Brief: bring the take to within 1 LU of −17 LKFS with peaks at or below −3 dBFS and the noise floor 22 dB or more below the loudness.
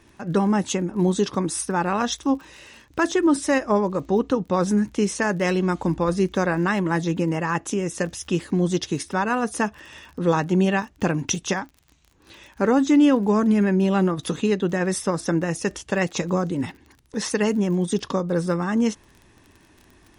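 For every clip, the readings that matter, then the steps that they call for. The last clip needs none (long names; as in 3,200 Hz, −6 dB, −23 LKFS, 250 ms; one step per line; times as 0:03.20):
crackle rate 32 per second; integrated loudness −23.0 LKFS; sample peak −8.0 dBFS; target loudness −17.0 LKFS
→ click removal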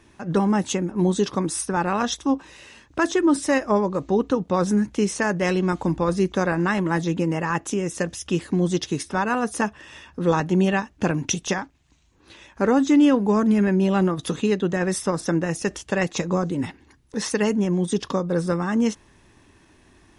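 crackle rate 0 per second; integrated loudness −23.0 LKFS; sample peak −8.0 dBFS; target loudness −17.0 LKFS
→ level +6 dB
brickwall limiter −3 dBFS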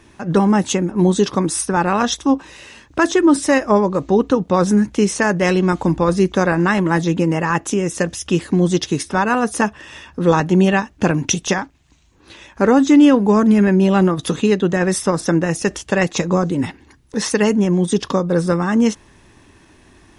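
integrated loudness −17.0 LKFS; sample peak −3.0 dBFS; background noise floor −50 dBFS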